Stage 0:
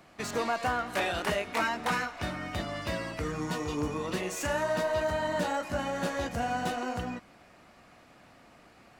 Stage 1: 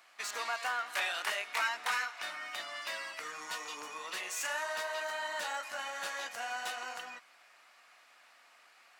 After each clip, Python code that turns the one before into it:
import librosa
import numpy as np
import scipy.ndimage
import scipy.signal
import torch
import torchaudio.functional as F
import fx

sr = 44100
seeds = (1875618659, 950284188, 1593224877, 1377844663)

y = scipy.signal.sosfilt(scipy.signal.butter(2, 1200.0, 'highpass', fs=sr, output='sos'), x)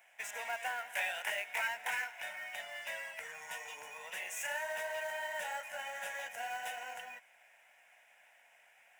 y = fx.fixed_phaser(x, sr, hz=1200.0, stages=6)
y = fx.quant_float(y, sr, bits=2)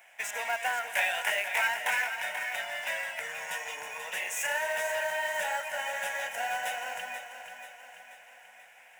y = fx.echo_feedback(x, sr, ms=485, feedback_pct=52, wet_db=-9.5)
y = F.gain(torch.from_numpy(y), 7.5).numpy()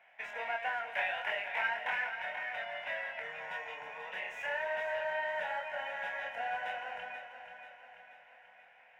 y = fx.air_absorb(x, sr, metres=350.0)
y = fx.doubler(y, sr, ms=26.0, db=-5)
y = F.gain(torch.from_numpy(y), -3.5).numpy()